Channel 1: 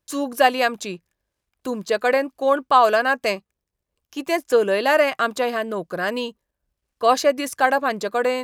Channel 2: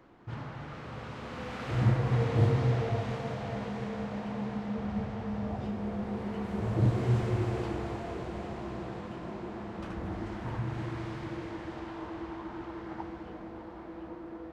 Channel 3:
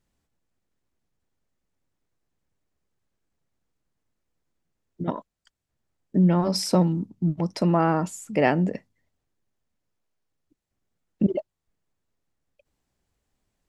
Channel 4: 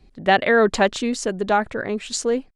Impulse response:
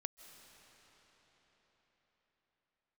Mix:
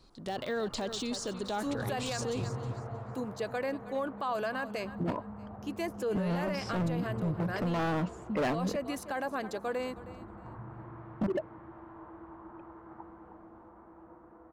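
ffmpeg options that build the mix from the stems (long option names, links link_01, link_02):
-filter_complex "[0:a]equalizer=frequency=260:width_type=o:width=1.4:gain=5,adelay=1500,volume=-13.5dB,asplit=2[link_01][link_02];[link_02]volume=-17.5dB[link_03];[1:a]lowpass=frequency=1200:width_type=q:width=2,volume=-12dB,asplit=2[link_04][link_05];[link_05]volume=-8dB[link_06];[2:a]lowpass=2200,asoftclip=type=hard:threshold=-24dB,volume=0.5dB[link_07];[3:a]deesser=0.9,highshelf=frequency=2900:width_type=q:width=1.5:gain=12,volume=-10.5dB,asplit=2[link_08][link_09];[link_09]volume=-15dB[link_10];[link_03][link_06][link_10]amix=inputs=3:normalize=0,aecho=0:1:315|630|945|1260:1|0.24|0.0576|0.0138[link_11];[link_01][link_04][link_07][link_08][link_11]amix=inputs=5:normalize=0,alimiter=level_in=1.5dB:limit=-24dB:level=0:latency=1:release=26,volume=-1.5dB"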